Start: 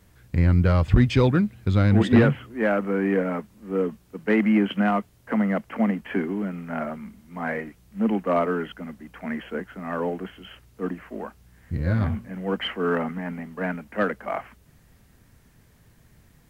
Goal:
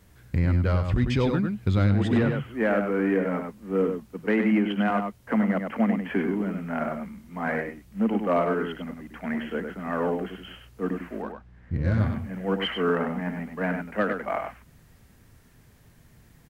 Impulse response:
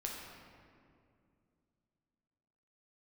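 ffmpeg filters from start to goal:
-filter_complex "[0:a]asettb=1/sr,asplit=3[link_01][link_02][link_03];[link_01]atrim=end=11.224[link_04];[link_02]atrim=start=11.22:end=11.99,asetpts=PTS-STARTPTS,afade=type=in:duration=0.004:curve=qsin,afade=type=out:start_time=0.766:duration=0.004:curve=qsin,adynamicsmooth=sensitivity=7.5:basefreq=2700[link_05];[link_03]atrim=start=11.986[link_06];[link_04][link_05]acrossfade=duration=0.004:curve1=hsin:curve2=qsin[link_07];[link_07][link_06]acrossfade=duration=0.004:curve1=qsin:curve2=hsin,asplit=2[link_08][link_09];[link_09]adelay=99.13,volume=-6dB,highshelf=frequency=4000:gain=-2.23[link_10];[link_08][link_10]amix=inputs=2:normalize=0,alimiter=limit=-14dB:level=0:latency=1:release=320"

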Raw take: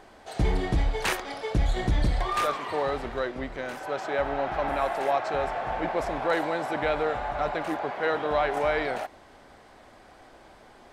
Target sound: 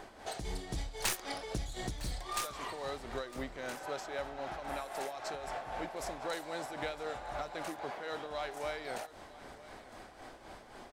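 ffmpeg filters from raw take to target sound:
ffmpeg -i in.wav -filter_complex "[0:a]acrossover=split=4700[link_01][link_02];[link_01]acompressor=threshold=-38dB:ratio=6[link_03];[link_02]aeval=exprs='0.0631*(cos(1*acos(clip(val(0)/0.0631,-1,1)))-cos(1*PI/2))+0.0178*(cos(4*acos(clip(val(0)/0.0631,-1,1)))-cos(4*PI/2))+0.00398*(cos(5*acos(clip(val(0)/0.0631,-1,1)))-cos(5*PI/2))':channel_layout=same[link_04];[link_03][link_04]amix=inputs=2:normalize=0,tremolo=f=3.8:d=0.58,aecho=1:1:957:0.119,volume=2.5dB" out.wav

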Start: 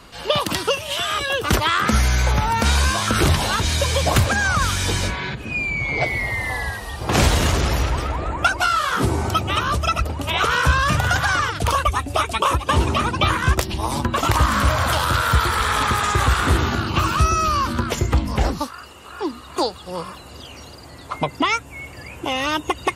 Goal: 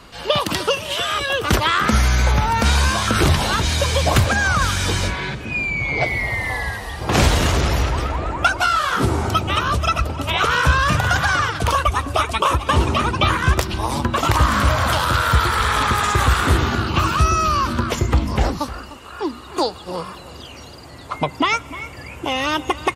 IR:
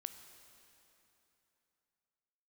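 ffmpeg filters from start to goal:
-filter_complex "[0:a]asettb=1/sr,asplit=3[link_01][link_02][link_03];[link_01]atrim=end=15.984[link_04];[link_02]atrim=start=15.98:end=16.55,asetpts=PTS-STARTPTS,afade=type=in:duration=0.004:curve=qsin,afade=type=out:start_time=0.566:duration=0.004:curve=qsin,highshelf=frequency=12000:gain=7.5[link_05];[link_03]atrim=start=16.546[link_06];[link_04][link_05]acrossfade=duration=0.004:curve1=hsin:curve2=qsin[link_07];[link_07][link_06]acrossfade=duration=0.004:curve1=qsin:curve2=hsin,asplit=2[link_08][link_09];[link_09]adelay=303.2,volume=-16dB,highshelf=frequency=4000:gain=-6.82[link_10];[link_08][link_10]amix=inputs=2:normalize=0,asplit=2[link_11][link_12];[1:a]atrim=start_sample=2205,lowpass=7700[link_13];[link_12][link_13]afir=irnorm=-1:irlink=0,volume=-6.5dB[link_14];[link_11][link_14]amix=inputs=2:normalize=0,volume=-1dB"

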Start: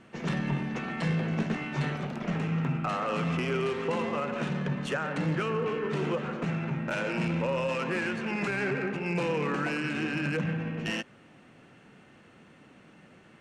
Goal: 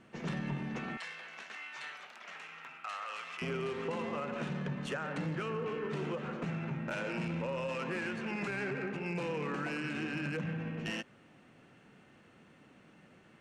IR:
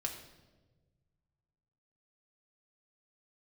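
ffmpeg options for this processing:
-filter_complex "[0:a]asettb=1/sr,asplit=3[link_01][link_02][link_03];[link_01]atrim=end=0.974[link_04];[link_02]atrim=start=0.97:end=3.42,asetpts=PTS-STARTPTS,afade=type=in:duration=0.004:curve=qsin,afade=type=out:start_time=2.446:duration=0.004:curve=qsin,highpass=1300[link_05];[link_03]atrim=start=3.416[link_06];[link_04][link_05]acrossfade=duration=0.004:curve1=hsin:curve2=qsin[link_07];[link_07][link_06]acrossfade=duration=0.004:curve1=qsin:curve2=hsin,acompressor=threshold=-27dB:ratio=6,volume=-5dB"

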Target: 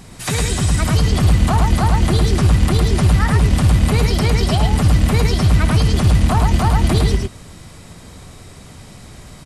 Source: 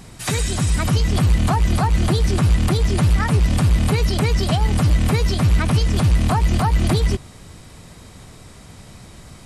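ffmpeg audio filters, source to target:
ffmpeg -i in.wav -af "aecho=1:1:64.14|107.9:0.251|0.708,volume=1dB" out.wav

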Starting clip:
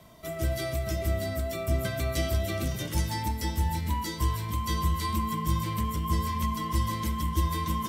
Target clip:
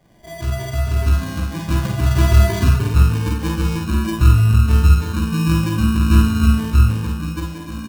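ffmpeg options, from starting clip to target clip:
ffmpeg -i in.wav -filter_complex "[0:a]afftfilt=real='re*pow(10,18/40*sin(2*PI*(1.3*log(max(b,1)*sr/1024/100)/log(2)-(0.52)*(pts-256)/sr)))':imag='im*pow(10,18/40*sin(2*PI*(1.3*log(max(b,1)*sr/1024/100)/log(2)-(0.52)*(pts-256)/sr)))':win_size=1024:overlap=0.75,acrossover=split=3700[link_01][link_02];[link_02]acompressor=threshold=-46dB:ratio=4:attack=1:release=60[link_03];[link_01][link_03]amix=inputs=2:normalize=0,equalizer=frequency=1700:width=0.61:gain=-11,bandreject=frequency=48.57:width_type=h:width=4,bandreject=frequency=97.14:width_type=h:width=4,bandreject=frequency=145.71:width_type=h:width=4,bandreject=frequency=194.28:width_type=h:width=4,bandreject=frequency=242.85:width_type=h:width=4,acrossover=split=590|2400[link_04][link_05][link_06];[link_04]dynaudnorm=framelen=220:gausssize=9:maxgain=16.5dB[link_07];[link_07][link_05][link_06]amix=inputs=3:normalize=0,acrusher=samples=33:mix=1:aa=0.000001,asplit=2[link_08][link_09];[link_09]aecho=0:1:45|55:0.562|0.531[link_10];[link_08][link_10]amix=inputs=2:normalize=0,volume=-2.5dB" out.wav

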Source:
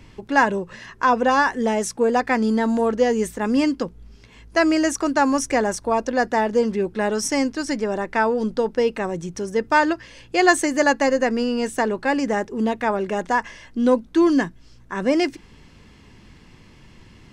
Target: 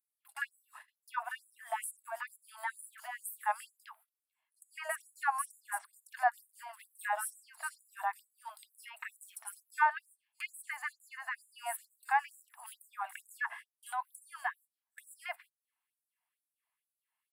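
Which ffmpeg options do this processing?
ffmpeg -i in.wav -filter_complex "[0:a]equalizer=frequency=6400:width=2.5:gain=-13.5,acrossover=split=5300[link_01][link_02];[link_01]adelay=60[link_03];[link_03][link_02]amix=inputs=2:normalize=0,agate=range=-29dB:threshold=-36dB:ratio=16:detection=peak,acrossover=split=180|2500[link_04][link_05][link_06];[link_05]equalizer=frequency=390:width=0.43:gain=8[link_07];[link_06]acompressor=threshold=-54dB:ratio=4[link_08];[link_04][link_07][link_08]amix=inputs=3:normalize=0,aexciter=amount=12.7:drive=7.4:freq=8700,acrossover=split=220[link_09][link_10];[link_10]acompressor=threshold=-12dB:ratio=6[link_11];[link_09][link_11]amix=inputs=2:normalize=0,afftfilt=real='re*gte(b*sr/1024,610*pow(6900/610,0.5+0.5*sin(2*PI*2.2*pts/sr)))':imag='im*gte(b*sr/1024,610*pow(6900/610,0.5+0.5*sin(2*PI*2.2*pts/sr)))':win_size=1024:overlap=0.75,volume=-6.5dB" out.wav

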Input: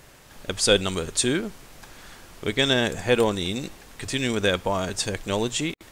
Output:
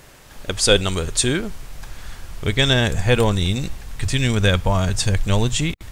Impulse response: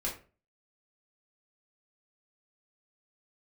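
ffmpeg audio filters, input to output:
-af "asubboost=boost=7.5:cutoff=120,volume=4dB"

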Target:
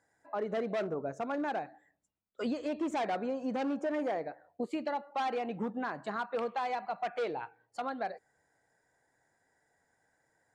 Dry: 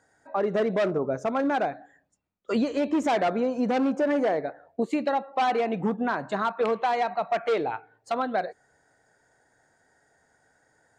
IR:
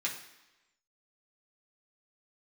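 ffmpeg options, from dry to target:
-af "asetrate=45938,aresample=44100,volume=-9dB"

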